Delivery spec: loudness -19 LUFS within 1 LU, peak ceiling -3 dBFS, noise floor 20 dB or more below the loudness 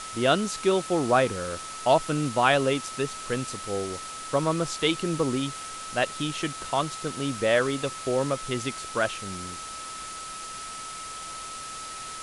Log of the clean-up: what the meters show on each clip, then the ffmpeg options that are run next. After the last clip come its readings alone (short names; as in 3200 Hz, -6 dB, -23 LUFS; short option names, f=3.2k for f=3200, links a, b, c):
steady tone 1300 Hz; tone level -38 dBFS; noise floor -38 dBFS; noise floor target -48 dBFS; loudness -27.5 LUFS; peak -6.0 dBFS; loudness target -19.0 LUFS
-> -af "bandreject=f=1.3k:w=30"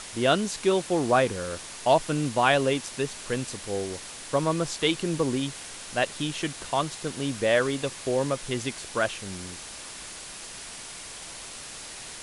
steady tone none; noise floor -41 dBFS; noise floor target -47 dBFS
-> -af "afftdn=nr=6:nf=-41"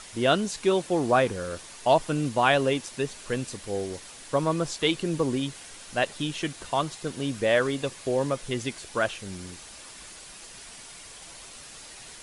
noise floor -46 dBFS; noise floor target -47 dBFS
-> -af "afftdn=nr=6:nf=-46"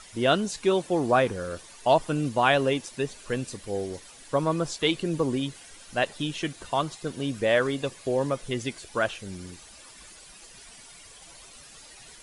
noise floor -49 dBFS; loudness -27.0 LUFS; peak -7.0 dBFS; loudness target -19.0 LUFS
-> -af "volume=8dB,alimiter=limit=-3dB:level=0:latency=1"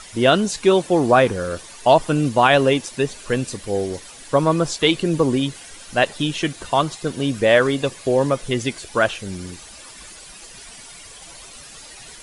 loudness -19.5 LUFS; peak -3.0 dBFS; noise floor -41 dBFS